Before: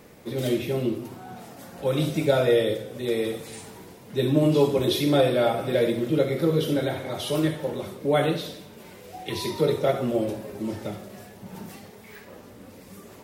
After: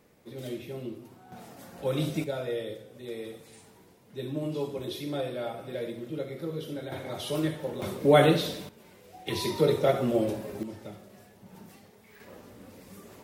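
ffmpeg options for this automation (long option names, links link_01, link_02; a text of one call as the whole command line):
ffmpeg -i in.wav -af "asetnsamples=nb_out_samples=441:pad=0,asendcmd='1.32 volume volume -4.5dB;2.24 volume volume -12.5dB;6.92 volume volume -5dB;7.82 volume volume 3dB;8.69 volume volume -9dB;9.27 volume volume -1dB;10.63 volume volume -10dB;12.2 volume volume -3.5dB',volume=-12dB" out.wav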